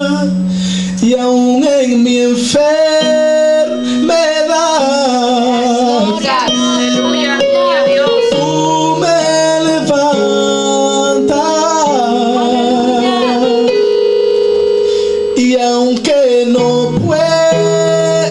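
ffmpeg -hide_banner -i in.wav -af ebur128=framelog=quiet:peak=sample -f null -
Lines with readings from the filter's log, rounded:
Integrated loudness:
  I:         -11.0 LUFS
  Threshold: -21.0 LUFS
Loudness range:
  LRA:         0.9 LU
  Threshold: -31.0 LUFS
  LRA low:   -11.3 LUFS
  LRA high:  -10.4 LUFS
Sample peak:
  Peak:       -3.4 dBFS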